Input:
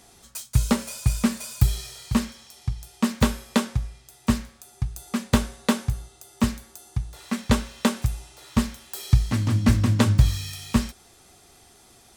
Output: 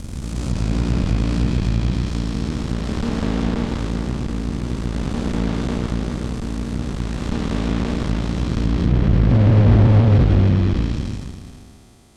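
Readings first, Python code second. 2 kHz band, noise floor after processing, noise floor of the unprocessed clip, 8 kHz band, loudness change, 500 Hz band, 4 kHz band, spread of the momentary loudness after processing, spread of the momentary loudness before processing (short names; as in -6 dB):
+0.5 dB, -40 dBFS, -54 dBFS, -7.0 dB, +5.0 dB, +6.5 dB, -1.0 dB, 12 LU, 14 LU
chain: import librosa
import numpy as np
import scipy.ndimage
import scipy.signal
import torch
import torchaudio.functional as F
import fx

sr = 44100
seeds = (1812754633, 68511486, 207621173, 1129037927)

y = fx.spec_blur(x, sr, span_ms=1080.0)
y = fx.cheby_harmonics(y, sr, harmonics=(8,), levels_db=(-10,), full_scale_db=-15.0)
y = fx.low_shelf(y, sr, hz=390.0, db=11.0)
y = fx.env_lowpass_down(y, sr, base_hz=2700.0, full_db=-13.0)
y = fx.high_shelf(y, sr, hz=10000.0, db=-8.0)
y = y * librosa.db_to_amplitude(1.5)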